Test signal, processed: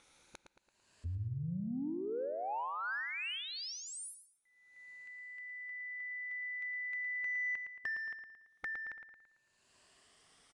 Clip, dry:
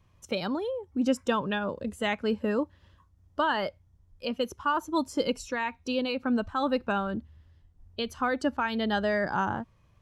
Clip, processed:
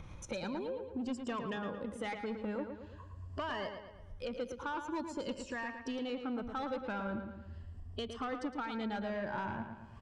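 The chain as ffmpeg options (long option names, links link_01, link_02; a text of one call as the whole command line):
ffmpeg -i in.wav -filter_complex "[0:a]afftfilt=real='re*pow(10,8/40*sin(2*PI*(1.4*log(max(b,1)*sr/1024/100)/log(2)-(0.46)*(pts-256)/sr)))':imag='im*pow(10,8/40*sin(2*PI*(1.4*log(max(b,1)*sr/1024/100)/log(2)-(0.46)*(pts-256)/sr)))':win_size=1024:overlap=0.75,acompressor=mode=upward:threshold=-46dB:ratio=2.5,asoftclip=type=tanh:threshold=-23dB,acompressor=threshold=-51dB:ratio=2.5,highshelf=frequency=4800:gain=-5.5,aresample=22050,aresample=44100,asplit=2[link_01][link_02];[link_02]adelay=112,lowpass=frequency=4500:poles=1,volume=-7dB,asplit=2[link_03][link_04];[link_04]adelay=112,lowpass=frequency=4500:poles=1,volume=0.5,asplit=2[link_05][link_06];[link_06]adelay=112,lowpass=frequency=4500:poles=1,volume=0.5,asplit=2[link_07][link_08];[link_08]adelay=112,lowpass=frequency=4500:poles=1,volume=0.5,asplit=2[link_09][link_10];[link_10]adelay=112,lowpass=frequency=4500:poles=1,volume=0.5,asplit=2[link_11][link_12];[link_12]adelay=112,lowpass=frequency=4500:poles=1,volume=0.5[link_13];[link_03][link_05][link_07][link_09][link_11][link_13]amix=inputs=6:normalize=0[link_14];[link_01][link_14]amix=inputs=2:normalize=0,adynamicequalizer=threshold=0.00141:dfrequency=3100:dqfactor=0.7:tfrequency=3100:tqfactor=0.7:attack=5:release=100:ratio=0.375:range=1.5:mode=cutabove:tftype=highshelf,volume=6dB" out.wav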